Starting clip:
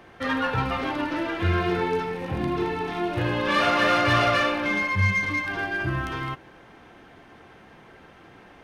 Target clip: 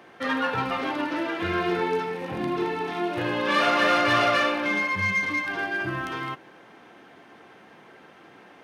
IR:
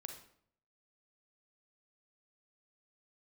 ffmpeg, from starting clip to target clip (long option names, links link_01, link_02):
-af "highpass=190"